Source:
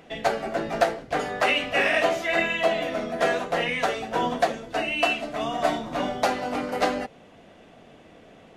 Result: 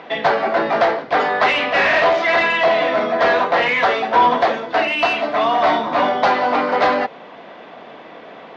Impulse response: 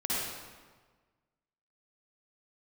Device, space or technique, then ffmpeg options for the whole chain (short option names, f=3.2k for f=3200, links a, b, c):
overdrive pedal into a guitar cabinet: -filter_complex "[0:a]asplit=2[a][b];[b]highpass=f=720:p=1,volume=24dB,asoftclip=type=tanh:threshold=-5dB[c];[a][c]amix=inputs=2:normalize=0,lowpass=f=3.3k:p=1,volume=-6dB,highpass=84,equalizer=f=110:t=q:w=4:g=-7,equalizer=f=1k:t=q:w=4:g=6,equalizer=f=2.8k:t=q:w=4:g=-5,lowpass=f=4.6k:w=0.5412,lowpass=f=4.6k:w=1.3066,volume=-1.5dB"